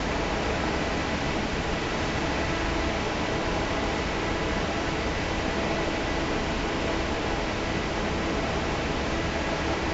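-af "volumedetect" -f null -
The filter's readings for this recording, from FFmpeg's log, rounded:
mean_volume: -27.4 dB
max_volume: -13.9 dB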